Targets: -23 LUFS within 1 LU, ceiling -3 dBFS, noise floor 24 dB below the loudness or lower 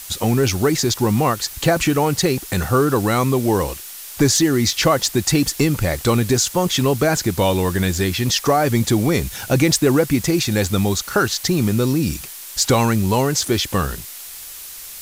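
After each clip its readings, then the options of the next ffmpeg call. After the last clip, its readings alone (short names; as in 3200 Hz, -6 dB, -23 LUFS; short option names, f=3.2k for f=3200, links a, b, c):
noise floor -35 dBFS; noise floor target -42 dBFS; loudness -18.0 LUFS; peak -5.0 dBFS; loudness target -23.0 LUFS
-> -af "afftdn=nr=7:nf=-35"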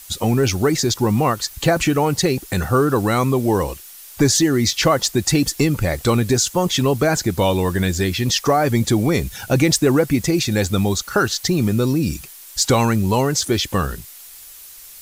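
noise floor -40 dBFS; noise floor target -43 dBFS
-> -af "afftdn=nr=6:nf=-40"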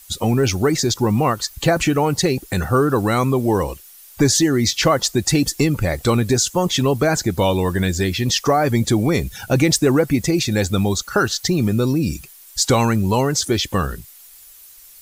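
noise floor -44 dBFS; loudness -18.5 LUFS; peak -5.5 dBFS; loudness target -23.0 LUFS
-> -af "volume=-4.5dB"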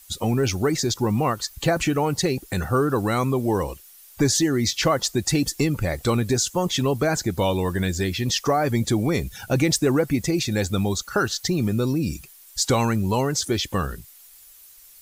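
loudness -23.0 LUFS; peak -10.0 dBFS; noise floor -49 dBFS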